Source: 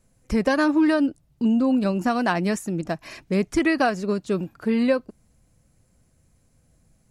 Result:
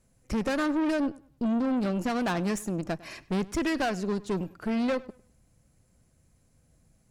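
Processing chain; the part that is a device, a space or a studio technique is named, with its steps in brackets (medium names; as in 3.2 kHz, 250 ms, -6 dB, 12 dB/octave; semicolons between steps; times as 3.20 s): rockabilly slapback (valve stage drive 24 dB, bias 0.55; tape echo 100 ms, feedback 29%, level -19.5 dB, low-pass 4.8 kHz)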